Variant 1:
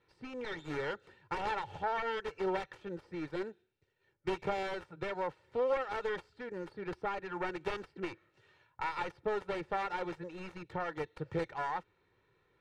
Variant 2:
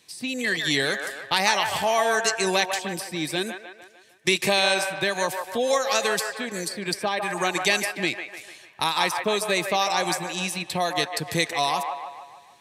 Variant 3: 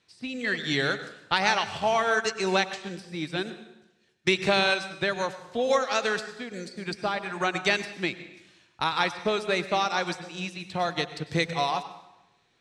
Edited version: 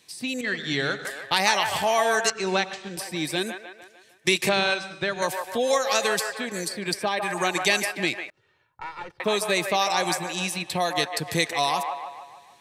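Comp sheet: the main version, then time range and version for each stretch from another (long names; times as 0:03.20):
2
0:00.41–0:01.05: punch in from 3
0:02.30–0:02.97: punch in from 3
0:04.49–0:05.22: punch in from 3
0:08.30–0:09.20: punch in from 1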